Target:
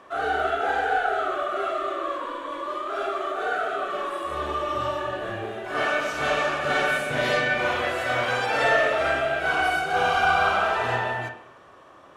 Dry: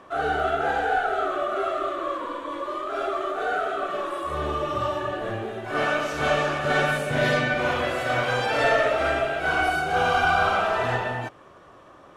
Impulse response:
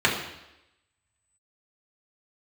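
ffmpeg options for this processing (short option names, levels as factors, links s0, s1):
-filter_complex "[0:a]lowshelf=f=350:g=-6.5,asplit=2[s0][s1];[1:a]atrim=start_sample=2205,adelay=30[s2];[s1][s2]afir=irnorm=-1:irlink=0,volume=0.075[s3];[s0][s3]amix=inputs=2:normalize=0"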